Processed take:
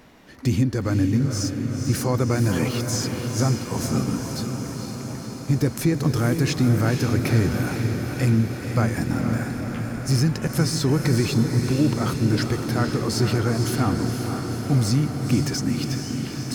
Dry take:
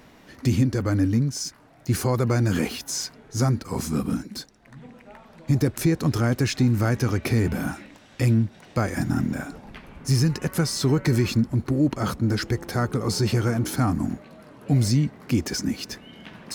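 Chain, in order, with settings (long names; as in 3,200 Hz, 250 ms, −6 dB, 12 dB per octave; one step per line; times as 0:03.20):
feedback delay with all-pass diffusion 493 ms, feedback 71%, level −6 dB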